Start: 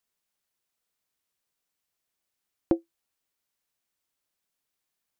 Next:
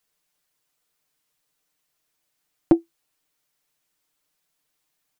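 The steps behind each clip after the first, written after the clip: comb 6.6 ms, depth 72%; trim +5.5 dB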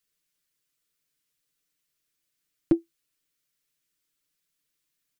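peaking EQ 800 Hz -14 dB 0.89 oct; trim -3.5 dB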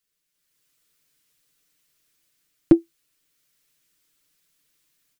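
level rider gain up to 10 dB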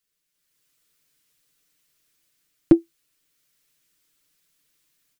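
no audible change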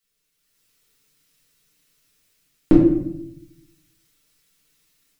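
simulated room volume 190 m³, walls mixed, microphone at 1.6 m

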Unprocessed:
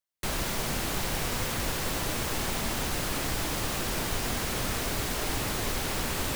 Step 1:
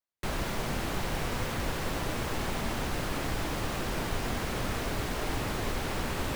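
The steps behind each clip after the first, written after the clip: treble shelf 3.8 kHz -10.5 dB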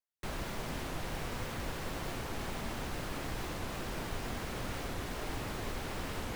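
warped record 45 rpm, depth 250 cents; trim -6.5 dB

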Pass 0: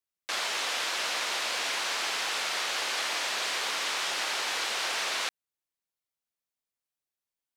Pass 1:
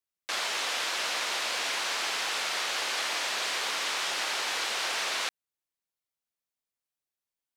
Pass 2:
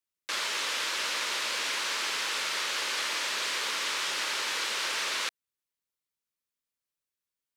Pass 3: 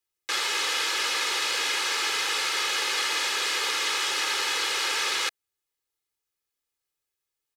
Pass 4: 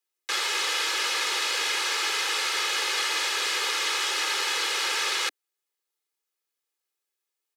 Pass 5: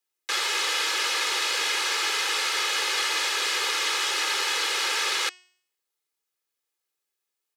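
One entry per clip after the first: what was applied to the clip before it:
no audible change
peaking EQ 730 Hz -12.5 dB 0.28 oct
comb 2.4 ms, depth 63%; trim +3 dB
steep high-pass 300 Hz 72 dB/octave
de-hum 365 Hz, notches 23; trim +1 dB

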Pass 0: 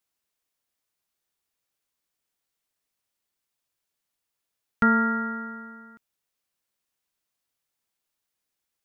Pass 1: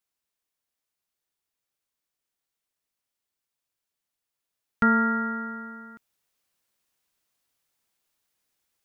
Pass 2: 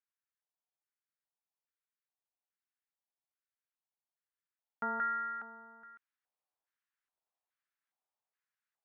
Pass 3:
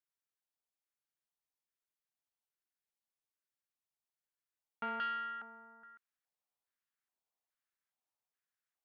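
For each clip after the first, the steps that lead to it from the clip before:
gain riding 2 s
LFO band-pass square 1.2 Hz 790–1600 Hz; trim -5 dB
self-modulated delay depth 0.078 ms; trim -3 dB

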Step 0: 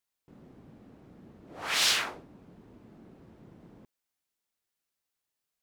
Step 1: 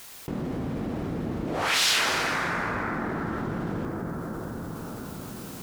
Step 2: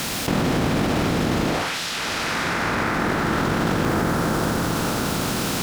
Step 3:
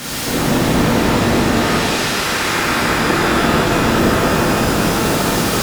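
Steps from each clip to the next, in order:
plate-style reverb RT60 3.9 s, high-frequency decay 0.3×, DRR 3.5 dB; level flattener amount 70%; trim +1 dB
spectral levelling over time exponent 0.6; compressor with a negative ratio -28 dBFS, ratio -1; reverse echo 658 ms -11.5 dB; trim +5.5 dB
pitch-shifted reverb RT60 3 s, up +12 st, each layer -8 dB, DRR -10 dB; trim -4 dB

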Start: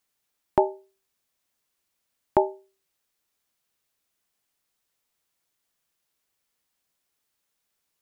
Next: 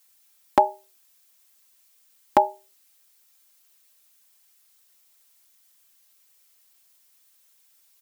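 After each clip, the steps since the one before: tilt EQ +3 dB/octave; comb 3.8 ms, depth 73%; trim +5 dB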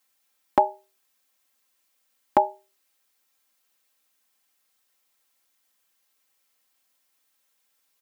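treble shelf 3.1 kHz -10 dB; trim -1 dB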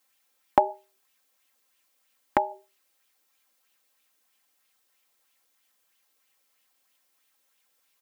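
compression, threshold -19 dBFS, peak gain reduction 6.5 dB; sweeping bell 3.1 Hz 360–3000 Hz +7 dB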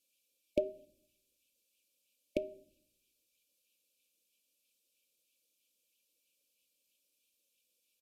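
brick-wall FIR band-stop 630–2200 Hz; on a send at -19.5 dB: reverberation RT60 0.70 s, pre-delay 6 ms; on the sum: resampled via 32 kHz; trim -5.5 dB

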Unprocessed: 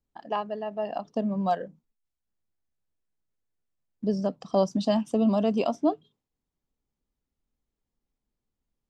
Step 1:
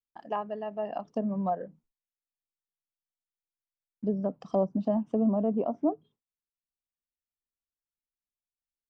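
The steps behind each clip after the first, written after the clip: peaking EQ 4 kHz -6.5 dB 0.59 oct; low-pass that closes with the level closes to 820 Hz, closed at -21.5 dBFS; gate with hold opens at -60 dBFS; trim -2.5 dB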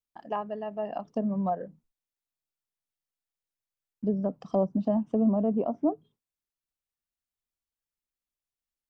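bass shelf 160 Hz +5 dB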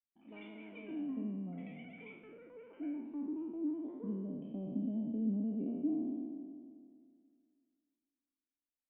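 spectral sustain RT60 2.17 s; ever faster or slower copies 105 ms, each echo +7 st, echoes 3; cascade formant filter i; trim -6 dB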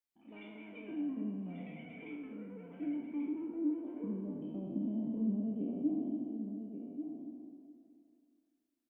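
delay 1138 ms -8.5 dB; reverberation RT60 2.3 s, pre-delay 5 ms, DRR 6.5 dB

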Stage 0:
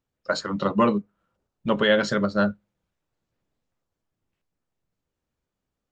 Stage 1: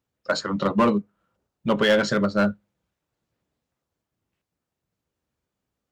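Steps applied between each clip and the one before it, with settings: high-pass 52 Hz; in parallel at -5 dB: wavefolder -16 dBFS; on the sum: trim -2 dB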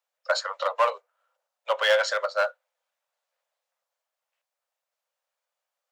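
steep high-pass 520 Hz 72 dB/octave

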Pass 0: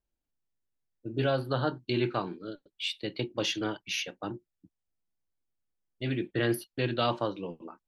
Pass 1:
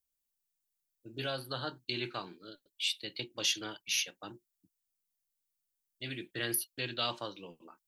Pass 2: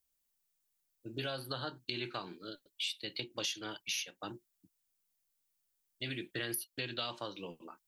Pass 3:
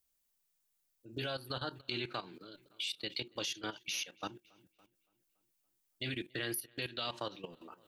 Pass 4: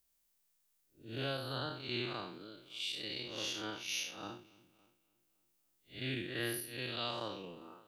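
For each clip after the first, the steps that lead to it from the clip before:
pre-emphasis filter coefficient 0.9; trim +7.5 dB
compression 4:1, threshold -40 dBFS, peak gain reduction 12 dB; trim +4 dB
filtered feedback delay 283 ms, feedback 46%, low-pass 4.4 kHz, level -20.5 dB; level held to a coarse grid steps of 14 dB; trim +4.5 dB
spectral blur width 153 ms; trim +4 dB

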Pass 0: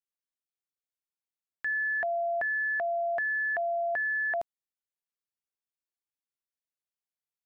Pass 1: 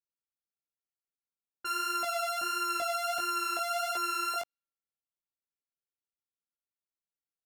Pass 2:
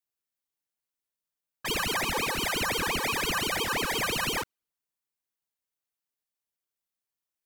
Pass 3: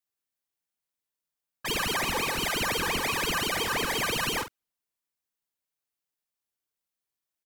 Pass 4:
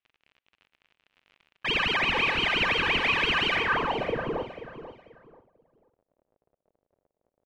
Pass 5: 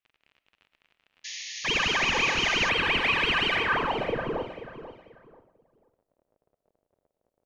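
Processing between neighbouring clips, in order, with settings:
sorted samples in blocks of 32 samples; level-controlled noise filter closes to 620 Hz, open at -32 dBFS; chorus 1.5 Hz, delay 16.5 ms, depth 4.8 ms
treble shelf 9.8 kHz +5 dB; ring modulator with a swept carrier 1 kHz, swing 85%, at 5.8 Hz; trim +6 dB
doubling 46 ms -10 dB
crackle 48 per s -44 dBFS; low-pass sweep 2.7 kHz -> 570 Hz, 3.54–4.05 s; on a send: feedback delay 488 ms, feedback 26%, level -12 dB
reverberation RT60 0.45 s, pre-delay 65 ms, DRR 14 dB; painted sound noise, 1.24–2.70 s, 1.7–6.9 kHz -38 dBFS

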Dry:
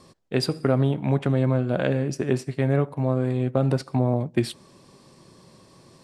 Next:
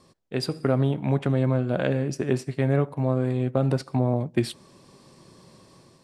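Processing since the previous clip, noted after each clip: level rider gain up to 5.5 dB; trim -5.5 dB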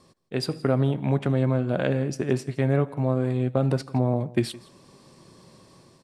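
delay 166 ms -21 dB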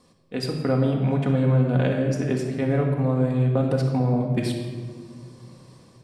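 simulated room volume 2100 m³, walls mixed, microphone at 1.9 m; trim -2 dB

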